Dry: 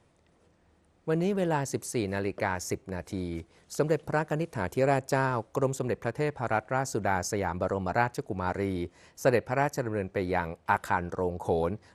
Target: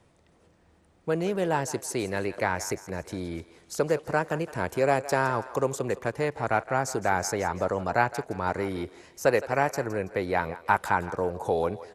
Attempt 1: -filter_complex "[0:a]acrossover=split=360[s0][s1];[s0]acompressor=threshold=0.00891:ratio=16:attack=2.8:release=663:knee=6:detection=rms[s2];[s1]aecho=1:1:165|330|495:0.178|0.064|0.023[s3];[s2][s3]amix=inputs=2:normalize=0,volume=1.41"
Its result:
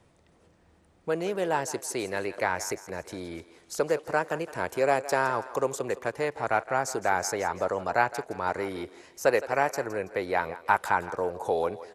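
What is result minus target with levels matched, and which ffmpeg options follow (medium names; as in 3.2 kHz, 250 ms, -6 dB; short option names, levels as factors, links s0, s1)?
compression: peak gain reduction +9 dB
-filter_complex "[0:a]acrossover=split=360[s0][s1];[s0]acompressor=threshold=0.0266:ratio=16:attack=2.8:release=663:knee=6:detection=rms[s2];[s1]aecho=1:1:165|330|495:0.178|0.064|0.023[s3];[s2][s3]amix=inputs=2:normalize=0,volume=1.41"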